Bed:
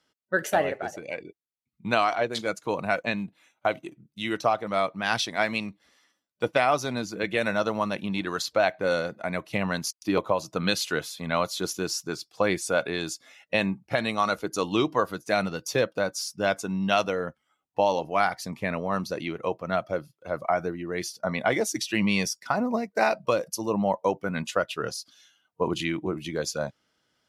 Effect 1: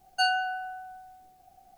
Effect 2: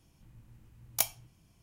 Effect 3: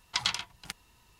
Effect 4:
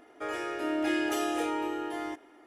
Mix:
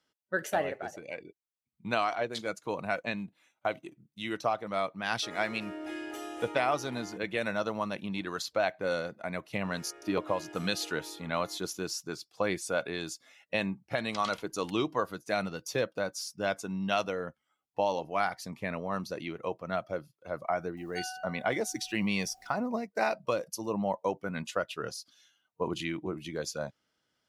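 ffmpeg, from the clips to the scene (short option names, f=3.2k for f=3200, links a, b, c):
-filter_complex "[4:a]asplit=2[a][b];[0:a]volume=-6dB[c];[3:a]agate=range=-33dB:threshold=-53dB:ratio=3:release=100:detection=peak[d];[1:a]acompressor=mode=upward:threshold=-33dB:ratio=2.5:attack=3.2:release=140:knee=2.83:detection=peak[e];[a]atrim=end=2.46,asetpts=PTS-STARTPTS,volume=-10.5dB,afade=t=in:d=0.004:c=hsin,afade=t=out:st=2.456:d=0.004:c=hsin,adelay=5020[f];[b]atrim=end=2.46,asetpts=PTS-STARTPTS,volume=-17dB,afade=t=in:d=0.004:c=hsin,afade=t=out:st=2.456:d=0.004:c=hsin,adelay=9430[g];[d]atrim=end=1.19,asetpts=PTS-STARTPTS,volume=-13.5dB,afade=t=in:d=0.004:c=hsin,afade=t=out:st=1.186:d=0.004:c=hsin,adelay=13990[h];[e]atrim=end=1.77,asetpts=PTS-STARTPTS,volume=-15dB,afade=t=in:d=0.004:c=hsin,afade=t=out:st=1.766:d=0.004:c=hsin,adelay=20770[i];[c][f][g][h][i]amix=inputs=5:normalize=0"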